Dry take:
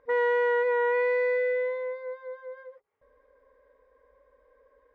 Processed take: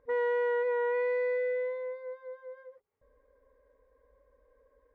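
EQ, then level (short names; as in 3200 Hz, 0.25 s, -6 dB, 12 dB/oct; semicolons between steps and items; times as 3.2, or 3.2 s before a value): low shelf 360 Hz +11.5 dB; -8.0 dB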